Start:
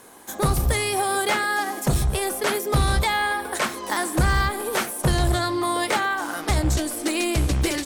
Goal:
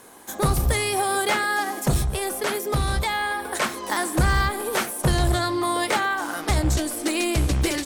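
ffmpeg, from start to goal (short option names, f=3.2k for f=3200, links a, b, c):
-filter_complex "[0:a]asettb=1/sr,asplit=3[a][b][c];[a]atrim=end=2.014[d];[b]atrim=start=2.01:end=3.55,asetpts=PTS-STARTPTS,afade=t=in:d=0.004:c=qsin,afade=t=out:st=1.536:d=0.004:c=qsin,acompressor=threshold=-25dB:ratio=1.5[e];[c]atrim=start=3.546[f];[d][e]acrossfade=d=0.004:c1=hsin:c2=qsin[g];[g][f]acrossfade=d=0.004:c1=qsin:c2=hsin"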